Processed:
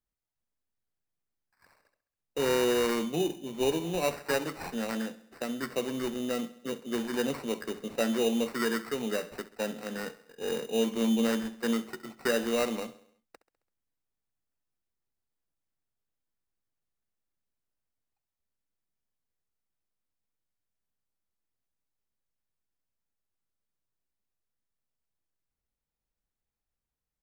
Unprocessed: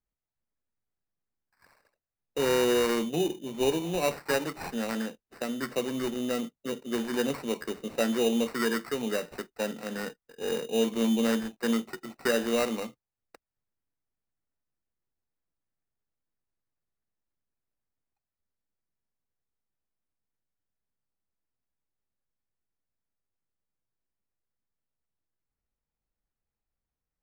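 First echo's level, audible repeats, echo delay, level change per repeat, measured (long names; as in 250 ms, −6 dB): −17.0 dB, 4, 67 ms, −5.0 dB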